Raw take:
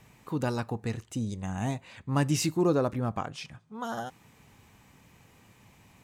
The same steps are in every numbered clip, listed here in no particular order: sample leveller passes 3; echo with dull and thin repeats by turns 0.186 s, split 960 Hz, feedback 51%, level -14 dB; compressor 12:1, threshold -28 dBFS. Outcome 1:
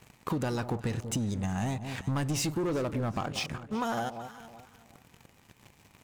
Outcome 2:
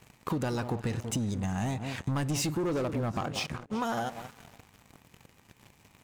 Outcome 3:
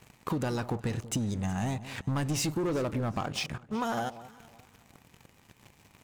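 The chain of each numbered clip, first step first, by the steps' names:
sample leveller > echo with dull and thin repeats by turns > compressor; echo with dull and thin repeats by turns > sample leveller > compressor; sample leveller > compressor > echo with dull and thin repeats by turns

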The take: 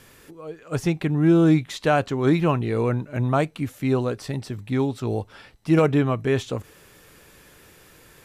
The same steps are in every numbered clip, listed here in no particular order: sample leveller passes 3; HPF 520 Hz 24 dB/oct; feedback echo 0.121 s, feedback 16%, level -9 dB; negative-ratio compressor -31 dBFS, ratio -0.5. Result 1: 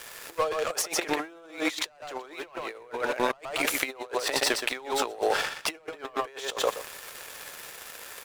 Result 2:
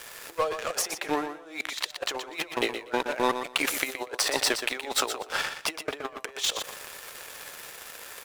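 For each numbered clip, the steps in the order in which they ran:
HPF > sample leveller > feedback echo > negative-ratio compressor; HPF > sample leveller > negative-ratio compressor > feedback echo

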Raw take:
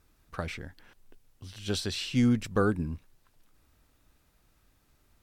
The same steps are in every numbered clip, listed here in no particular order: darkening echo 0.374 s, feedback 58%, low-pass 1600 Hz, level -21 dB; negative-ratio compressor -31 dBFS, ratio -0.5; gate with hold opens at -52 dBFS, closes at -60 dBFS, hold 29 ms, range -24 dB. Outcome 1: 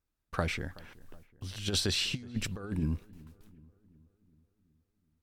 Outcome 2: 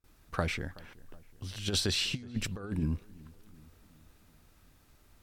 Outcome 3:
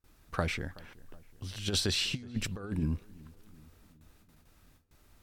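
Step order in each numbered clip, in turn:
gate with hold > negative-ratio compressor > darkening echo; negative-ratio compressor > darkening echo > gate with hold; negative-ratio compressor > gate with hold > darkening echo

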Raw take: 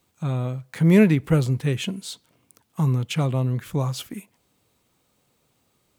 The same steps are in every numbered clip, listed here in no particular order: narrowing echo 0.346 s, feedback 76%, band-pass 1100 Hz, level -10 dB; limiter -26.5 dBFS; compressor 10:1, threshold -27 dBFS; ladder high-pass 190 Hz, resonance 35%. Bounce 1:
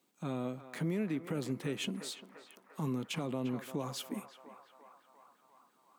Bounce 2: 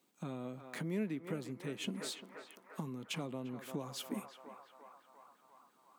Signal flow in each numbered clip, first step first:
ladder high-pass > compressor > narrowing echo > limiter; narrowing echo > compressor > ladder high-pass > limiter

